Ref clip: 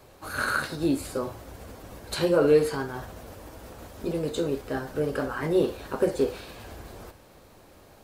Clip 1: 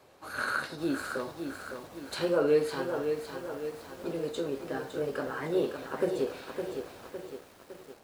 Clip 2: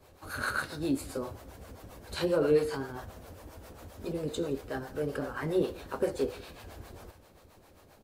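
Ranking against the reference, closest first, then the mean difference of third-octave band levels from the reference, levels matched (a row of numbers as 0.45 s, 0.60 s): 2, 1; 2.0 dB, 4.0 dB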